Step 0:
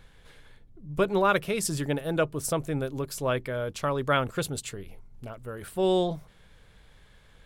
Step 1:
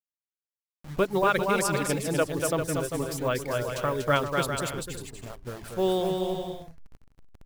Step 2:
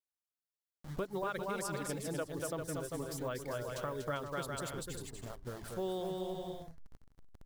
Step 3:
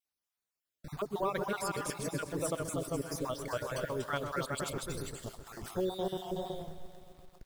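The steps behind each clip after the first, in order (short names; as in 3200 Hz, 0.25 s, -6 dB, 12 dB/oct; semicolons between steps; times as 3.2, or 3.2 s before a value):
level-crossing sampler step -39 dBFS; reverb removal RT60 0.85 s; on a send: bouncing-ball echo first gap 0.24 s, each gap 0.65×, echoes 5
bell 2500 Hz -6 dB 0.4 oct; compressor 2.5:1, threshold -34 dBFS, peak gain reduction 10.5 dB; gain -4.5 dB
random spectral dropouts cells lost 33%; vibrato 2.2 Hz 31 cents; lo-fi delay 0.13 s, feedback 80%, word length 10-bit, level -14.5 dB; gain +5 dB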